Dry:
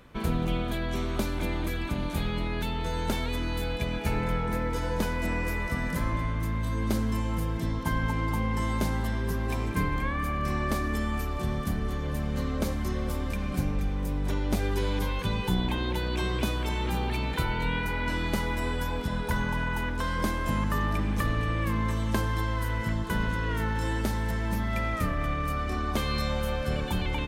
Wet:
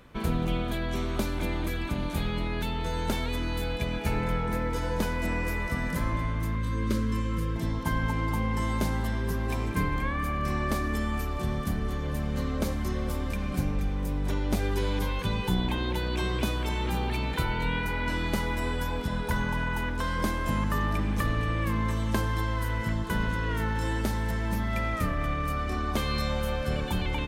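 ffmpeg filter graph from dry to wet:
ffmpeg -i in.wav -filter_complex "[0:a]asettb=1/sr,asplit=3[link_01][link_02][link_03];[link_01]atrim=end=6.554[link_04];[link_02]atrim=start=6.55:end=7.56,asetpts=PTS-STARTPTS,afade=type=in:duration=0.004:curve=qsin,afade=type=out:start_time=1.006:duration=0.004:curve=qsin,asuperstop=centerf=750:order=12:qfactor=2.1,highshelf=frequency=9700:gain=-8.5[link_05];[link_03]atrim=start=7.556[link_06];[link_04][link_05]acrossfade=duration=0.004:curve1=hsin:curve2=qsin[link_07];[link_07][link_06]acrossfade=duration=0.004:curve1=qsin:curve2=hsin" out.wav

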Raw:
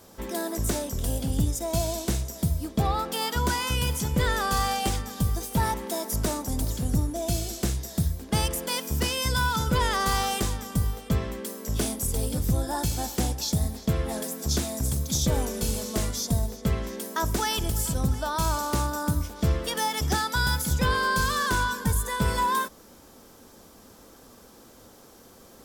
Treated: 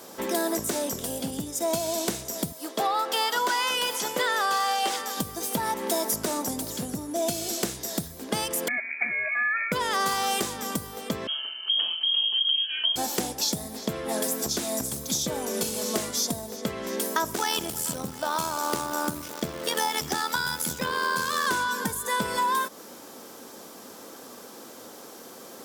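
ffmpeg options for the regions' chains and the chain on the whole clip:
ffmpeg -i in.wav -filter_complex "[0:a]asettb=1/sr,asplit=3[link_01][link_02][link_03];[link_01]atrim=end=2.524[link_04];[link_02]atrim=start=2.52:end=5.17,asetpts=PTS-STARTPTS,afade=type=in:duration=0.004:curve=qsin,afade=type=out:start_time=2.646:duration=0.004:curve=qsin,highpass=470,acrossover=split=5400[link_05][link_06];[link_06]acompressor=threshold=-39dB:ratio=4:attack=1:release=60[link_07];[link_05][link_07]amix=inputs=2:normalize=0,bandreject=frequency=2400:width=19[link_08];[link_03]atrim=start=5.166[link_09];[link_04][link_08]acrossfade=duration=0.004:curve1=hsin:curve2=qsin[link_10];[link_10][link_09]acrossfade=duration=0.004:curve1=qsin:curve2=hsin,asettb=1/sr,asplit=3[link_11][link_12][link_13];[link_11]atrim=end=8.684[link_14];[link_12]atrim=start=8.68:end=9.72,asetpts=PTS-STARTPTS,afade=type=in:duration=0.004:curve=qsin,afade=type=out:start_time=1.036:duration=0.004:curve=qsin,highpass=frequency=320:width=0.5412,highpass=frequency=320:width=1.3066,equalizer=frequency=1600:width_type=o:width=0.63:gain=-14.5,lowpass=frequency=2300:width_type=q:width=0.5098,lowpass=frequency=2300:width_type=q:width=0.6013,lowpass=frequency=2300:width_type=q:width=0.9,lowpass=frequency=2300:width_type=q:width=2.563,afreqshift=-2700[link_15];[link_13]atrim=start=9.716[link_16];[link_14][link_15]acrossfade=duration=0.004:curve1=hsin:curve2=qsin[link_17];[link_17][link_16]acrossfade=duration=0.004:curve1=qsin:curve2=hsin,asettb=1/sr,asplit=3[link_18][link_19][link_20];[link_18]atrim=end=11.274[link_21];[link_19]atrim=start=11.27:end=12.96,asetpts=PTS-STARTPTS,afade=type=in:duration=0.004:curve=qsin,afade=type=out:start_time=1.686:duration=0.004:curve=qsin,equalizer=frequency=780:width=0.68:gain=-14,bandreject=frequency=1300:width=5.5,lowpass=frequency=2800:width_type=q:width=0.5098,lowpass=frequency=2800:width_type=q:width=0.6013,lowpass=frequency=2800:width_type=q:width=0.9,lowpass=frequency=2800:width_type=q:width=2.563,afreqshift=-3300[link_22];[link_20]atrim=start=12.956[link_23];[link_21][link_22]acrossfade=duration=0.004:curve1=hsin:curve2=qsin[link_24];[link_24][link_23]acrossfade=duration=0.004:curve1=qsin:curve2=hsin,asettb=1/sr,asplit=3[link_25][link_26][link_27];[link_25]atrim=end=17.344[link_28];[link_26]atrim=start=17.34:end=21.47,asetpts=PTS-STARTPTS,afade=type=in:duration=0.004:curve=qsin,afade=type=out:start_time=4.126:duration=0.004:curve=qsin,tremolo=f=81:d=0.667,acrusher=bits=8:dc=4:mix=0:aa=0.000001[link_29];[link_27]atrim=start=21.466[link_30];[link_28][link_29]acrossfade=duration=0.004:curve1=hsin:curve2=qsin[link_31];[link_31][link_30]acrossfade=duration=0.004:curve1=qsin:curve2=hsin,acompressor=threshold=-30dB:ratio=6,highpass=250,volume=8dB" out.wav

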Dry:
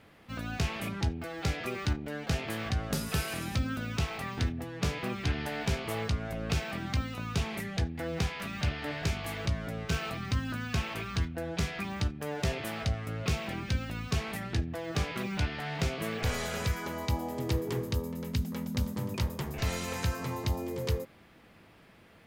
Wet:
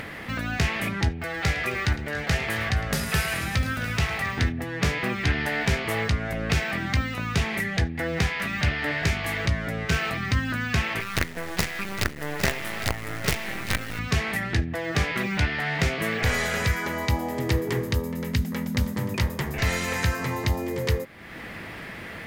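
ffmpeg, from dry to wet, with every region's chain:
ffmpeg -i in.wav -filter_complex "[0:a]asettb=1/sr,asplit=3[link_01][link_02][link_03];[link_01]atrim=end=1.094[link_04];[link_02]atrim=start=1.09:end=4.37,asetpts=PTS-STARTPTS,afade=type=in:duration=0.004:curve=qsin,afade=type=out:start_time=3.276:duration=0.004:curve=qsin,equalizer=frequency=280:width_type=o:width=0.85:gain=-6,aecho=1:1:108|264|701:0.158|0.112|0.168,atrim=end_sample=144648[link_05];[link_03]atrim=start=4.366[link_06];[link_04][link_05]acrossfade=duration=0.004:curve1=hsin:curve2=qsin[link_07];[link_07][link_06]acrossfade=duration=0.004:curve1=qsin:curve2=hsin,asettb=1/sr,asplit=3[link_08][link_09][link_10];[link_08]atrim=end=11.004[link_11];[link_09]atrim=start=11:end=13.99,asetpts=PTS-STARTPTS,afade=type=in:duration=0.004:curve=qsin,afade=type=out:start_time=2.986:duration=0.004:curve=qsin,lowshelf=frequency=80:gain=-6.5,acrusher=bits=5:dc=4:mix=0:aa=0.000001,aecho=1:1:809:0.237,atrim=end_sample=131859[link_12];[link_10]atrim=start=13.986[link_13];[link_11][link_12]acrossfade=duration=0.004:curve1=hsin:curve2=qsin[link_14];[link_14][link_13]acrossfade=duration=0.004:curve1=qsin:curve2=hsin,equalizer=frequency=1900:width=2.6:gain=9,acompressor=mode=upward:threshold=-32dB:ratio=2.5,volume=6dB" out.wav

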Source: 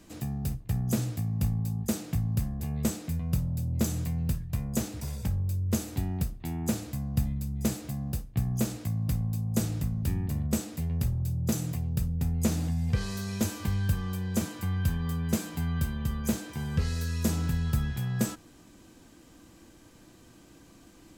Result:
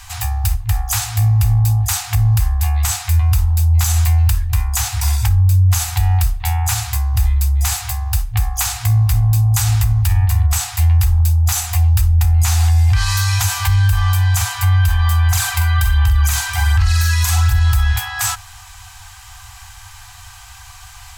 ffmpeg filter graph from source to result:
ffmpeg -i in.wav -filter_complex "[0:a]asettb=1/sr,asplit=3[link_01][link_02][link_03];[link_01]atrim=end=15.274[link_04];[link_02]atrim=start=15.27:end=17.6,asetpts=PTS-STARTPTS,afade=type=in:duration=0.004:curve=qsin,afade=type=out:start_time=2.326:duration=0.004:curve=qsin,acompressor=threshold=-30dB:ratio=2:attack=3.2:release=140:knee=1:detection=peak,aphaser=in_gain=1:out_gain=1:delay=2.1:decay=0.51:speed=1.3:type=sinusoidal,asplit=2[link_05][link_06];[link_06]adelay=44,volume=-5.5dB[link_07];[link_05][link_07]amix=inputs=2:normalize=0,atrim=end_sample=102753[link_08];[link_03]atrim=start=17.596[link_09];[link_04][link_08]acrossfade=duration=0.004:curve1=hsin:curve2=qsin[link_10];[link_10][link_09]acrossfade=duration=0.004:curve1=qsin:curve2=hsin,afftfilt=real='re*(1-between(b*sr/4096,110,700))':imag='im*(1-between(b*sr/4096,110,700))':win_size=4096:overlap=0.75,alimiter=level_in=27dB:limit=-1dB:release=50:level=0:latency=1,volume=-6dB" out.wav

